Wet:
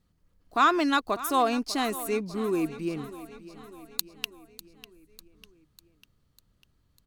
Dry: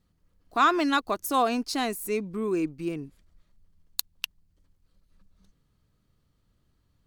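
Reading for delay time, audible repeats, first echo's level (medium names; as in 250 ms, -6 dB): 598 ms, 4, -16.0 dB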